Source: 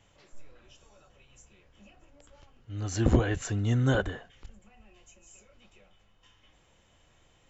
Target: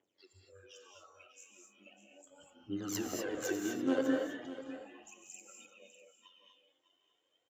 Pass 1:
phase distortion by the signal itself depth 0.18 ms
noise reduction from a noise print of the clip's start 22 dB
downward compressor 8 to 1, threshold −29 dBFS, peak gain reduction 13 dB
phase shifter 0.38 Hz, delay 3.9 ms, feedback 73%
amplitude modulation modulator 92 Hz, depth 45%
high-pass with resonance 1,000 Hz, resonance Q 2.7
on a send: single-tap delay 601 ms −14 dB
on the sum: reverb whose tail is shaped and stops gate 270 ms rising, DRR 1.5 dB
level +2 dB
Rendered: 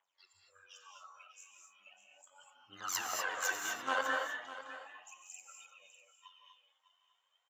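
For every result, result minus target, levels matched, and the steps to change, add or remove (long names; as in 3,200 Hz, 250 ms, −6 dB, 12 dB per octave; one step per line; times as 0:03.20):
250 Hz band −19.0 dB; downward compressor: peak gain reduction −6 dB
change: high-pass with resonance 330 Hz, resonance Q 2.7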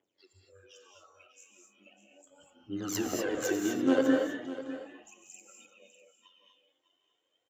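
downward compressor: peak gain reduction −6 dB
change: downward compressor 8 to 1, threshold −36 dBFS, peak gain reduction 19 dB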